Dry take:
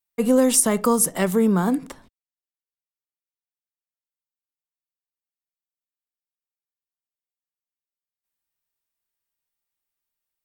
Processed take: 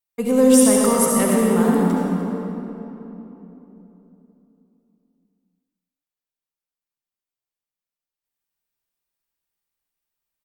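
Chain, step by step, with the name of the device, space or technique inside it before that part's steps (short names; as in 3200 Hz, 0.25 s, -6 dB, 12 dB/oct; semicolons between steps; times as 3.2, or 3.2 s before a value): cave (echo 0.295 s -15 dB; reverb RT60 3.4 s, pre-delay 59 ms, DRR -3 dB); gain -2.5 dB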